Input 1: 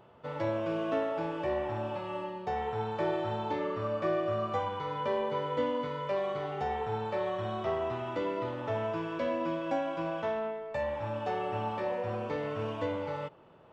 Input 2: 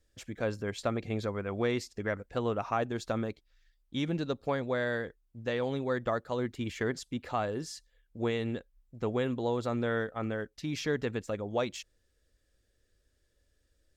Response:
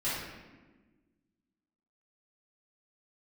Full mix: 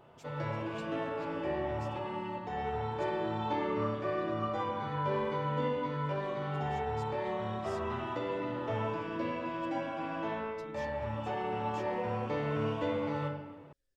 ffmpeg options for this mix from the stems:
-filter_complex "[0:a]volume=-3.5dB,asplit=2[link_01][link_02];[link_02]volume=-6.5dB[link_03];[1:a]aecho=1:1:7.4:0.78,alimiter=level_in=6.5dB:limit=-24dB:level=0:latency=1:release=163,volume=-6.5dB,volume=-14.5dB,asplit=2[link_04][link_05];[link_05]apad=whole_len=605403[link_06];[link_01][link_06]sidechaincompress=threshold=-57dB:ratio=8:attack=16:release=267[link_07];[2:a]atrim=start_sample=2205[link_08];[link_03][link_08]afir=irnorm=-1:irlink=0[link_09];[link_07][link_04][link_09]amix=inputs=3:normalize=0"

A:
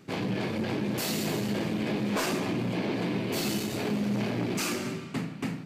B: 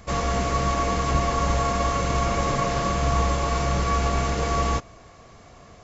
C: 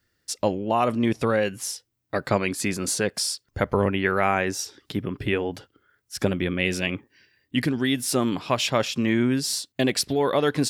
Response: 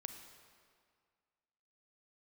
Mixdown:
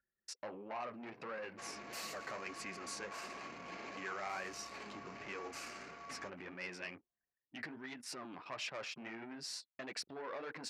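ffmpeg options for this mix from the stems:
-filter_complex "[0:a]adelay=950,volume=-4.5dB[link_01];[1:a]acompressor=threshold=-24dB:ratio=5,adelay=1500,volume=-15.5dB[link_02];[2:a]lowpass=frequency=1500:poles=1,acompressor=mode=upward:threshold=-39dB:ratio=2.5,asoftclip=type=tanh:threshold=-20dB,volume=1.5dB,asplit=3[link_03][link_04][link_05];[link_03]atrim=end=3.18,asetpts=PTS-STARTPTS,afade=type=out:start_time=3.176:duration=0.004:curve=hsin[link_06];[link_04]atrim=start=3.18:end=3.97,asetpts=PTS-STARTPTS,volume=0[link_07];[link_05]atrim=start=3.97,asetpts=PTS-STARTPTS,afade=type=in:duration=0.004:curve=hsin[link_08];[link_06][link_07][link_08]concat=n=3:v=0:a=1,asplit=2[link_09][link_10];[link_10]apad=whole_len=291272[link_11];[link_01][link_11]sidechaincompress=threshold=-28dB:ratio=12:attack=5.4:release=572[link_12];[link_12][link_09]amix=inputs=2:normalize=0,flanger=delay=3.4:depth=9.8:regen=-32:speed=1.5:shape=triangular,alimiter=level_in=4dB:limit=-24dB:level=0:latency=1:release=11,volume=-4dB,volume=0dB[link_13];[link_02][link_13]amix=inputs=2:normalize=0,anlmdn=0.0631,bandpass=frequency=3200:width_type=q:width=0.55:csg=0,equalizer=frequency=3400:width_type=o:width=0.49:gain=-9.5"

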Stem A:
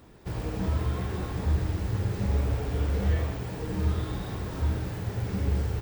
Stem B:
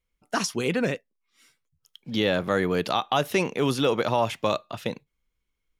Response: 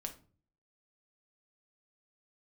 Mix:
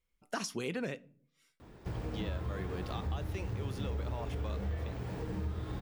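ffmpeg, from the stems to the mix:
-filter_complex "[0:a]highshelf=frequency=4700:gain=-7.5,adelay=1600,volume=-1dB[link_01];[1:a]volume=-4.5dB,afade=type=out:start_time=0.92:duration=0.35:silence=0.334965,asplit=2[link_02][link_03];[link_03]volume=-9dB[link_04];[2:a]atrim=start_sample=2205[link_05];[link_04][link_05]afir=irnorm=-1:irlink=0[link_06];[link_01][link_02][link_06]amix=inputs=3:normalize=0,acompressor=threshold=-36dB:ratio=3"

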